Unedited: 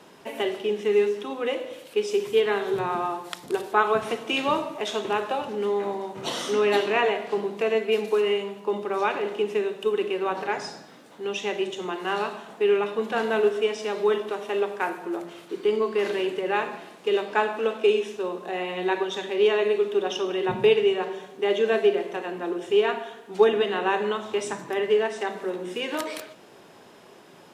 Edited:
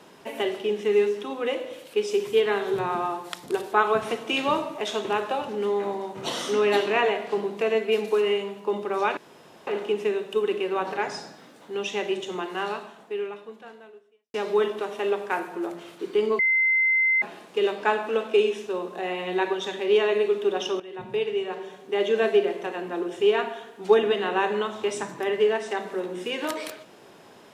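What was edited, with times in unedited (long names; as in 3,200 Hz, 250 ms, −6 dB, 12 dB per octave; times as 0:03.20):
0:09.17: splice in room tone 0.50 s
0:11.88–0:13.84: fade out quadratic
0:15.89–0:16.72: beep over 2,070 Hz −18 dBFS
0:20.30–0:21.67: fade in, from −16 dB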